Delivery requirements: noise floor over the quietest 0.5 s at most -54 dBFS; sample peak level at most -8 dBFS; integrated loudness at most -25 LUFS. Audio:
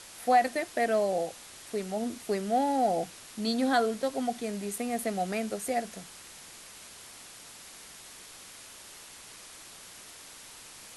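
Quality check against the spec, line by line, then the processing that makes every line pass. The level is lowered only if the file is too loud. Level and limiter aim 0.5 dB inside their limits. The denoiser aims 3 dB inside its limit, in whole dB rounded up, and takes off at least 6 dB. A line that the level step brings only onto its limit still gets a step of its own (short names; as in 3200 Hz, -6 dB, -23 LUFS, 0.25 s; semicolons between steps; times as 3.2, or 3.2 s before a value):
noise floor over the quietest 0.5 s -49 dBFS: fail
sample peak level -12.0 dBFS: OK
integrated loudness -30.0 LUFS: OK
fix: denoiser 8 dB, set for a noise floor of -49 dBFS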